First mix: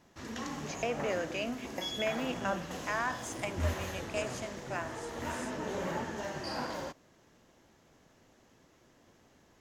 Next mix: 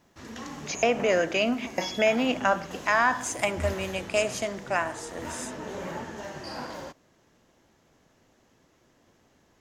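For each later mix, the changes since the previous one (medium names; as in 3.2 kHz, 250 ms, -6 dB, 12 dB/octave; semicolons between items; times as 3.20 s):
speech +11.0 dB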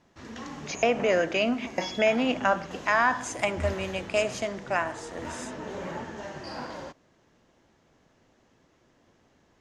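master: add distance through air 55 m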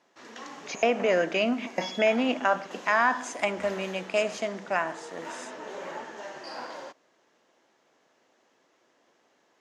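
speech: add treble shelf 8.9 kHz -9.5 dB; background: add high-pass 400 Hz 12 dB/octave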